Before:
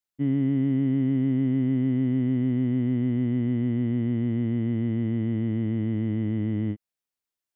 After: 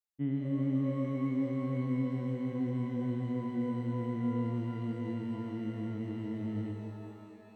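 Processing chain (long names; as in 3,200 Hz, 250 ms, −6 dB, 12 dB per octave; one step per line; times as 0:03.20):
reverb reduction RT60 0.58 s
reverb with rising layers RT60 3 s, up +12 semitones, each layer −8 dB, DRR 3.5 dB
level −8.5 dB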